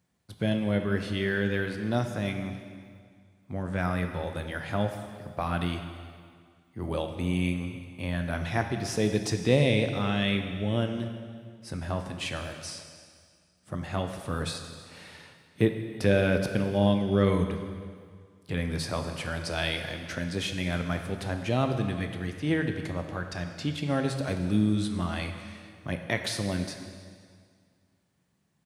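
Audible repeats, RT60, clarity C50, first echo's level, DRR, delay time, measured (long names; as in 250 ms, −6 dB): 1, 2.0 s, 7.0 dB, −22.5 dB, 5.5 dB, 318 ms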